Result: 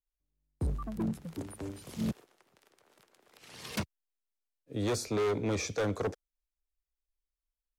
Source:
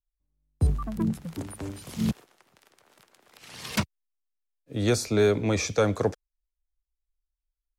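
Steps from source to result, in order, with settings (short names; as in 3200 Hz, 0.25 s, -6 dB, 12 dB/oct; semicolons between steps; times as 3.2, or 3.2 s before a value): bell 410 Hz +4.5 dB 1.1 oct; overloaded stage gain 20.5 dB; gain -6.5 dB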